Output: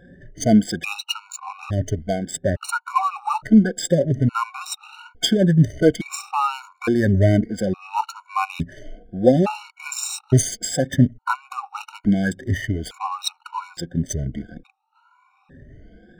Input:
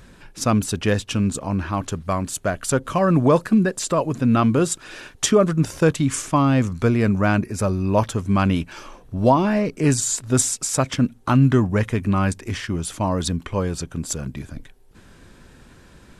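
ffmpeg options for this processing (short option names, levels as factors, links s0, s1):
-af "afftfilt=real='re*pow(10,21/40*sin(2*PI*(1.8*log(max(b,1)*sr/1024/100)/log(2)-(1.3)*(pts-256)/sr)))':imag='im*pow(10,21/40*sin(2*PI*(1.8*log(max(b,1)*sr/1024/100)/log(2)-(1.3)*(pts-256)/sr)))':win_size=1024:overlap=0.75,adynamicsmooth=sensitivity=4:basefreq=1600,afftfilt=real='re*gt(sin(2*PI*0.58*pts/sr)*(1-2*mod(floor(b*sr/1024/740),2)),0)':imag='im*gt(sin(2*PI*0.58*pts/sr)*(1-2*mod(floor(b*sr/1024/740),2)),0)':win_size=1024:overlap=0.75,volume=0.841"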